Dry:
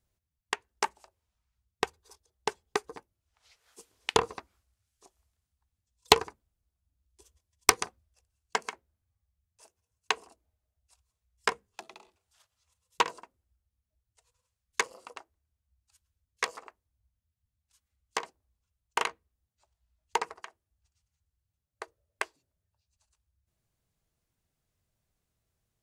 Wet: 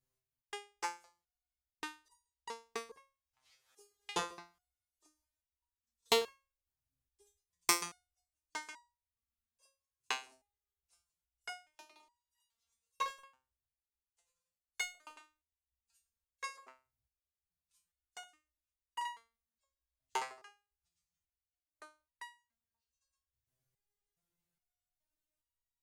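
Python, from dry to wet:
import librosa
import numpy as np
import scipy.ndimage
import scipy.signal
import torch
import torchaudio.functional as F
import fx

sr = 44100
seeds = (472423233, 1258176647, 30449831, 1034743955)

y = fx.high_shelf(x, sr, hz=10000.0, db=5.5)
y = fx.leveller(y, sr, passes=2, at=(13.01, 15.13))
y = fx.resonator_held(y, sr, hz=2.4, low_hz=130.0, high_hz=960.0)
y = y * librosa.db_to_amplitude(3.5)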